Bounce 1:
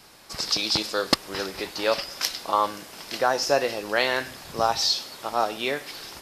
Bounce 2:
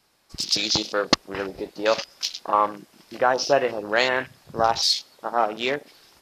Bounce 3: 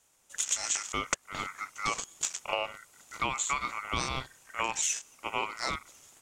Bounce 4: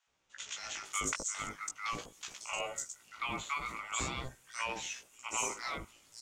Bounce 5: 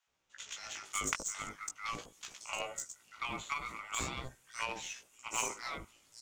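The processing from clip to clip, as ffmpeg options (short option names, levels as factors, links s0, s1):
-af "afwtdn=0.0251,volume=1.33"
-af "aeval=exprs='val(0)*sin(2*PI*1700*n/s)':c=same,equalizer=f=2000:t=o:w=1:g=-4,equalizer=f=4000:t=o:w=1:g=-6,equalizer=f=8000:t=o:w=1:g=10,acompressor=threshold=0.0562:ratio=6,volume=0.841"
-filter_complex "[0:a]flanger=delay=15.5:depth=3.3:speed=0.42,acrossover=split=800|5400[s0][s1][s2];[s0]adelay=70[s3];[s2]adelay=550[s4];[s3][s1][s4]amix=inputs=3:normalize=0,volume=0.891"
-af "aeval=exprs='0.119*(cos(1*acos(clip(val(0)/0.119,-1,1)))-cos(1*PI/2))+0.0266*(cos(3*acos(clip(val(0)/0.119,-1,1)))-cos(3*PI/2))+0.00106*(cos(6*acos(clip(val(0)/0.119,-1,1)))-cos(6*PI/2))':c=same,volume=2.11"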